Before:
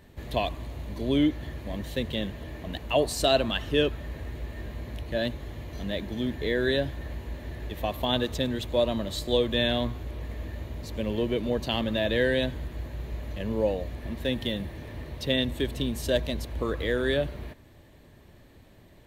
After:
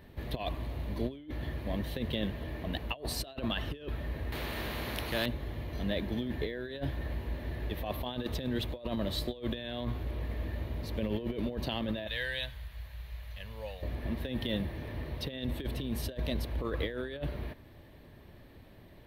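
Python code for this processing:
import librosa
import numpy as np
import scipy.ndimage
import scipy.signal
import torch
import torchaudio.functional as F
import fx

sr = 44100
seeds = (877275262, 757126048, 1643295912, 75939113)

y = fx.spectral_comp(x, sr, ratio=2.0, at=(4.32, 5.26))
y = fx.tone_stack(y, sr, knobs='10-0-10', at=(12.07, 13.83))
y = fx.peak_eq(y, sr, hz=7200.0, db=-13.0, octaves=0.56)
y = fx.over_compress(y, sr, threshold_db=-30.0, ratio=-0.5)
y = F.gain(torch.from_numpy(y), -3.0).numpy()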